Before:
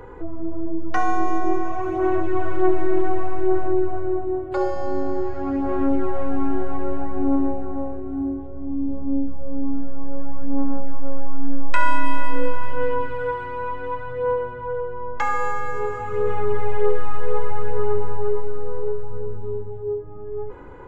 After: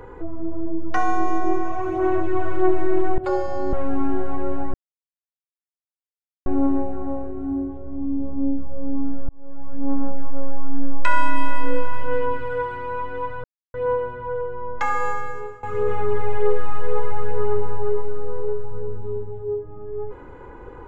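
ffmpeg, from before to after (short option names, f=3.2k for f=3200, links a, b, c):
-filter_complex "[0:a]asplit=7[a][b][c][d][e][f][g];[a]atrim=end=3.182[h];[b]atrim=start=4.458:end=5.012[i];[c]atrim=start=6.138:end=7.15,asetpts=PTS-STARTPTS,afade=t=out:st=1.008:d=0.004:c=hsin,apad=pad_dur=1.72[j];[d]atrim=start=7.15:end=9.98,asetpts=PTS-STARTPTS,afade=t=in:d=0.004:c=hsin,afade=t=out:st=2.826:d=0.004:c=hsin[k];[e]atrim=start=9.98:end=14.13,asetpts=PTS-STARTPTS,afade=t=in:d=0.66,afade=t=out:st=4.146:d=0.004:c=hsin,apad=pad_dur=0.3[l];[f]atrim=start=14.13:end=16.02,asetpts=PTS-STARTPTS,afade=t=in:d=0.004:c=hsin,afade=t=out:st=1.36:d=0.53:silence=0.11885[m];[g]atrim=start=16.02,asetpts=PTS-STARTPTS,afade=t=in:d=0.004:c=hsin:silence=0.11885[n];[h][i]acrossfade=d=0.004:c1=hsin:c2=hsin[o];[j][k][l][m][n]concat=n=5:v=0:a=1[p];[o][p]acrossfade=d=0.004:c1=hsin:c2=hsin"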